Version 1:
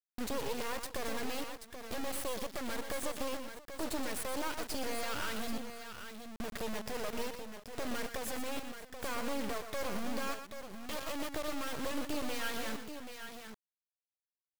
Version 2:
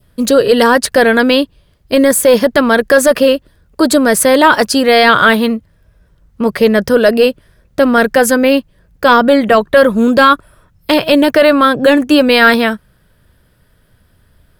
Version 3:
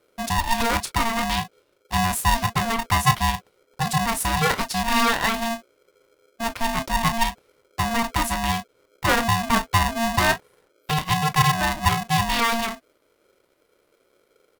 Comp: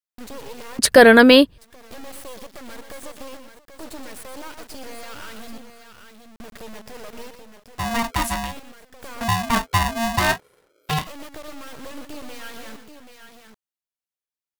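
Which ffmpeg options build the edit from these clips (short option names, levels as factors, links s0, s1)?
-filter_complex "[2:a]asplit=2[s0][s1];[0:a]asplit=4[s2][s3][s4][s5];[s2]atrim=end=0.792[s6];[1:a]atrim=start=0.788:end=1.582[s7];[s3]atrim=start=1.578:end=7.87[s8];[s0]atrim=start=7.71:end=8.55[s9];[s4]atrim=start=8.39:end=9.212[s10];[s1]atrim=start=9.208:end=11.072[s11];[s5]atrim=start=11.068[s12];[s6][s7]acrossfade=d=0.004:c1=hsin:c2=hsin[s13];[s13][s8]acrossfade=d=0.004:c1=hsin:c2=hsin[s14];[s14][s9]acrossfade=d=0.16:c1=tri:c2=tri[s15];[s15][s10]acrossfade=d=0.16:c1=tri:c2=tri[s16];[s16][s11]acrossfade=d=0.004:c1=hsin:c2=hsin[s17];[s17][s12]acrossfade=d=0.004:c1=hsin:c2=hsin"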